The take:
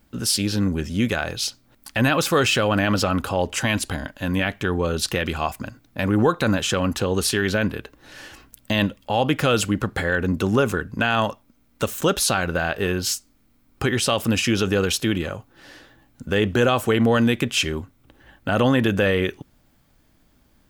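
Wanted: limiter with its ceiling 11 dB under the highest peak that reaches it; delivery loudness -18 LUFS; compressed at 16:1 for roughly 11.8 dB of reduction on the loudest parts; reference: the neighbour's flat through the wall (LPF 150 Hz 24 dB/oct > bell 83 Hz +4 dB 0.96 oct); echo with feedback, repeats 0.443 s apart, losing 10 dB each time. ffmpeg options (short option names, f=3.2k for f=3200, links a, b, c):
-af "acompressor=threshold=-26dB:ratio=16,alimiter=limit=-23dB:level=0:latency=1,lowpass=f=150:w=0.5412,lowpass=f=150:w=1.3066,equalizer=f=83:t=o:w=0.96:g=4,aecho=1:1:443|886|1329|1772:0.316|0.101|0.0324|0.0104,volume=22.5dB"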